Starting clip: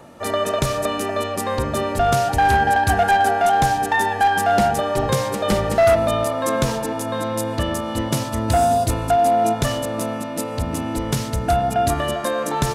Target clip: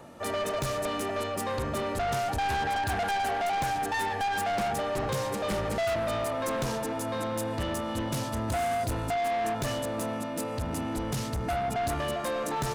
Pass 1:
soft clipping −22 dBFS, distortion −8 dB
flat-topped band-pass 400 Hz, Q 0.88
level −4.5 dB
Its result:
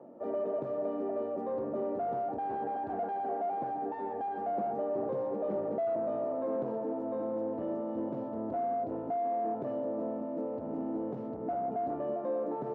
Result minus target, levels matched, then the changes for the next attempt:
500 Hz band +3.0 dB
remove: flat-topped band-pass 400 Hz, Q 0.88

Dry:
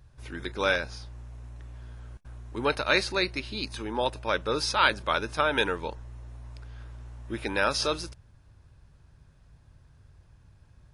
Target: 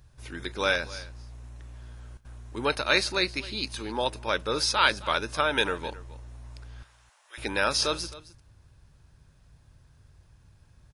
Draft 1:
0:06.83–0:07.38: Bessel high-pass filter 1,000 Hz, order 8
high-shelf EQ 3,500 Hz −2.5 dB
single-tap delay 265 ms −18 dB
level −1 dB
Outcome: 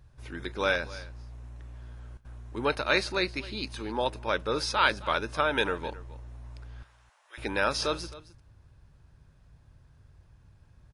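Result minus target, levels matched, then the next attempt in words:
8,000 Hz band −5.0 dB
0:06.83–0:07.38: Bessel high-pass filter 1,000 Hz, order 8
high-shelf EQ 3,500 Hz +6.5 dB
single-tap delay 265 ms −18 dB
level −1 dB

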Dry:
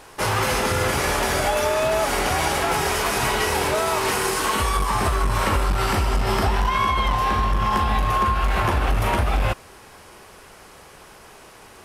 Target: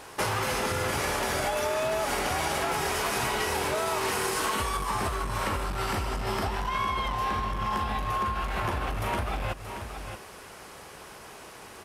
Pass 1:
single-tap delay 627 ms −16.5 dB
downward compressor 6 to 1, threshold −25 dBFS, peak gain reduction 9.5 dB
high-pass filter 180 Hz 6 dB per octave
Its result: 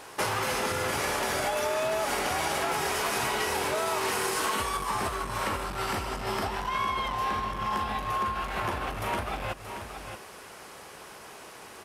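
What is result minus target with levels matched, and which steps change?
125 Hz band −4.5 dB
change: high-pass filter 64 Hz 6 dB per octave

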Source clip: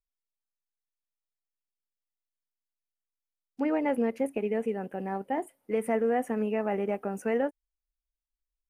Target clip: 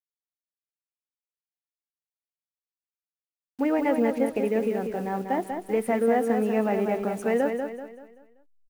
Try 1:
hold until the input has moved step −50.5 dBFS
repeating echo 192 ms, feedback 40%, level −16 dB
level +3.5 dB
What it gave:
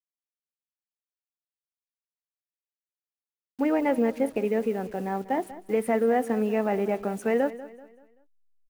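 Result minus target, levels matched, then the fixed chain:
echo-to-direct −10 dB
hold until the input has moved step −50.5 dBFS
repeating echo 192 ms, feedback 40%, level −6 dB
level +3.5 dB

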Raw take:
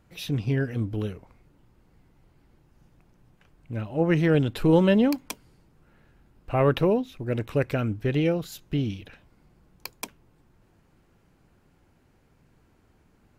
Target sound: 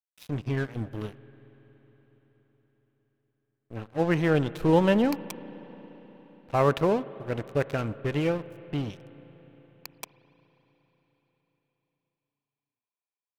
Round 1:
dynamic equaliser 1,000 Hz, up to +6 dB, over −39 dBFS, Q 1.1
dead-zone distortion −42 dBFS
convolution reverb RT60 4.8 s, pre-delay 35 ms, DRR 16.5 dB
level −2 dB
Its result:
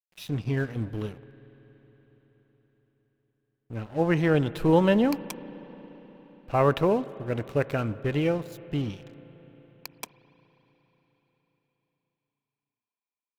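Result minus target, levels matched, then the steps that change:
dead-zone distortion: distortion −7 dB
change: dead-zone distortion −33.5 dBFS

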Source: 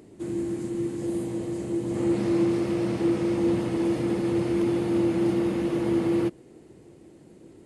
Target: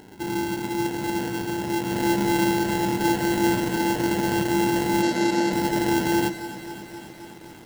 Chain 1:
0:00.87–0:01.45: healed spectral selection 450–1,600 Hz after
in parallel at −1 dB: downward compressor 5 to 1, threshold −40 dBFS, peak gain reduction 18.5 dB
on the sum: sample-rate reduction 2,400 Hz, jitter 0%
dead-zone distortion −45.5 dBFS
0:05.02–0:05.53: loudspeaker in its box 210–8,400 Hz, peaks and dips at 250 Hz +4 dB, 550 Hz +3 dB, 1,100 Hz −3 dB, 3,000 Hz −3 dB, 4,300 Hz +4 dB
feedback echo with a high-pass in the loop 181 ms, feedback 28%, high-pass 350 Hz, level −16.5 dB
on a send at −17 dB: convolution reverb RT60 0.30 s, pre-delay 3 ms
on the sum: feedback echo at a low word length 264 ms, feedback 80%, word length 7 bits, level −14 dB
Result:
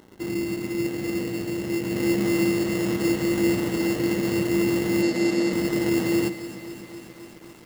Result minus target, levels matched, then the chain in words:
dead-zone distortion: distortion +8 dB; sample-rate reduction: distortion −8 dB
0:00.87–0:01.45: healed spectral selection 450–1,600 Hz after
in parallel at −1 dB: downward compressor 5 to 1, threshold −40 dBFS, peak gain reduction 18.5 dB
on the sum: sample-rate reduction 1,200 Hz, jitter 0%
dead-zone distortion −54 dBFS
0:05.02–0:05.53: loudspeaker in its box 210–8,400 Hz, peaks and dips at 250 Hz +4 dB, 550 Hz +3 dB, 1,100 Hz −3 dB, 3,000 Hz −3 dB, 4,300 Hz +4 dB
feedback echo with a high-pass in the loop 181 ms, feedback 28%, high-pass 350 Hz, level −16.5 dB
on a send at −17 dB: convolution reverb RT60 0.30 s, pre-delay 3 ms
on the sum: feedback echo at a low word length 264 ms, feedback 80%, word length 7 bits, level −14 dB

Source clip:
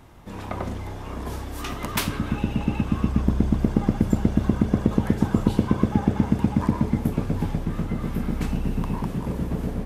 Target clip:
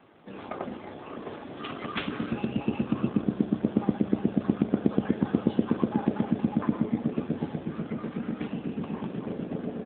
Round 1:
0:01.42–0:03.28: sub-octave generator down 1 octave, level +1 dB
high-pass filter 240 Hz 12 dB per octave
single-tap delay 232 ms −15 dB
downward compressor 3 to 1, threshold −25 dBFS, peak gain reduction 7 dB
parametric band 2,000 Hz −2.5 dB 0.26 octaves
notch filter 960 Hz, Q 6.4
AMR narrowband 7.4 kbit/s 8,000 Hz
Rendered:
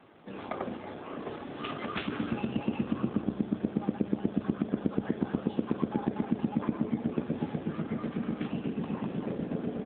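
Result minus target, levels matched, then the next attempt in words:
downward compressor: peak gain reduction +7 dB
0:01.42–0:03.28: sub-octave generator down 1 octave, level +1 dB
high-pass filter 240 Hz 12 dB per octave
parametric band 2,000 Hz −2.5 dB 0.26 octaves
notch filter 960 Hz, Q 6.4
single-tap delay 232 ms −15 dB
AMR narrowband 7.4 kbit/s 8,000 Hz

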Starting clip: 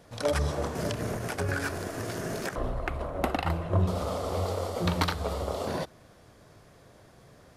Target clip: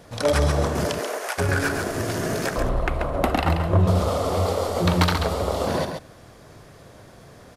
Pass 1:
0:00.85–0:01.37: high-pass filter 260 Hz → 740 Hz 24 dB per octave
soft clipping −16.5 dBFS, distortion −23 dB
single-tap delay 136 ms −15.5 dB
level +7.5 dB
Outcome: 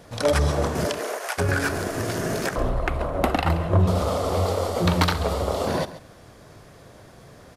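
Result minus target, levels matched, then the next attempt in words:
echo-to-direct −9 dB
0:00.85–0:01.37: high-pass filter 260 Hz → 740 Hz 24 dB per octave
soft clipping −16.5 dBFS, distortion −23 dB
single-tap delay 136 ms −6.5 dB
level +7.5 dB

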